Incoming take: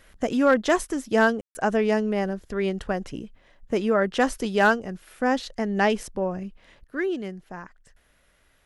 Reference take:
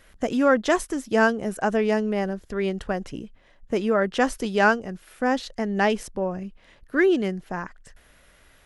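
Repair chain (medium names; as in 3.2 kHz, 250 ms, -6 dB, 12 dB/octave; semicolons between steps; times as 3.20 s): clip repair -10 dBFS; room tone fill 1.41–1.55 s; trim 0 dB, from 6.84 s +7.5 dB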